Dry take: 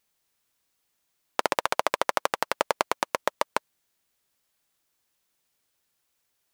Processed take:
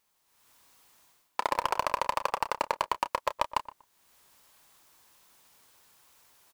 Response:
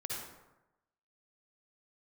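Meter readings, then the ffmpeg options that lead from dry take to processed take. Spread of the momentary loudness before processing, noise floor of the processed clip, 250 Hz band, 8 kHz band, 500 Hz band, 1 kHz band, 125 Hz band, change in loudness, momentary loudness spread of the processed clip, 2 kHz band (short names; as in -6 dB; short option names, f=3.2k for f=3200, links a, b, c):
4 LU, -74 dBFS, -7.0 dB, -7.5 dB, -6.0 dB, -1.0 dB, -0.5 dB, -3.0 dB, 6 LU, -6.0 dB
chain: -filter_complex "[0:a]equalizer=f=990:t=o:w=0.66:g=7.5,dynaudnorm=f=260:g=3:m=13.5dB,aeval=exprs='(tanh(6.31*val(0)+0.1)-tanh(0.1))/6.31':c=same,asplit=2[a][b];[b]adelay=30,volume=-13dB[c];[a][c]amix=inputs=2:normalize=0,asplit=2[d][e];[e]adelay=120,lowpass=f=1.4k:p=1,volume=-14dB,asplit=2[f][g];[g]adelay=120,lowpass=f=1.4k:p=1,volume=0.18[h];[d][f][h]amix=inputs=3:normalize=0"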